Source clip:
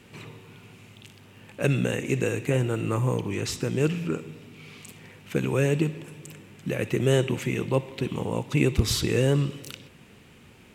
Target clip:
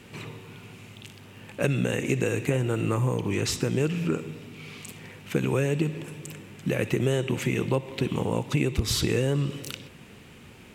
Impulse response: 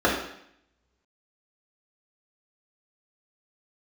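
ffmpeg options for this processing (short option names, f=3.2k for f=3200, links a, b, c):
-af "acompressor=threshold=-24dB:ratio=6,volume=3.5dB"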